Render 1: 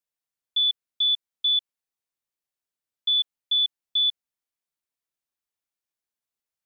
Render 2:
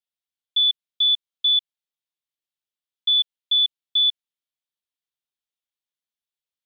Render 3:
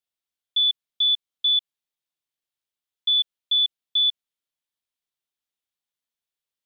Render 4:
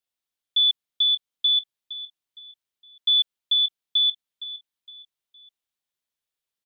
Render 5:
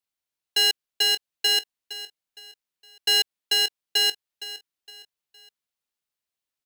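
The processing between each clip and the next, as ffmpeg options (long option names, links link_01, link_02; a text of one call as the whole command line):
ffmpeg -i in.wav -af "equalizer=frequency=3400:width_type=o:width=0.77:gain=10.5,volume=-7dB" out.wav
ffmpeg -i in.wav -af "alimiter=limit=-17.5dB:level=0:latency=1,volume=1.5dB" out.wav
ffmpeg -i in.wav -af "aecho=1:1:463|926|1389:0.2|0.0698|0.0244,volume=1dB" out.wav
ffmpeg -i in.wav -af "aeval=exprs='val(0)*sgn(sin(2*PI*610*n/s))':channel_layout=same,volume=-1dB" out.wav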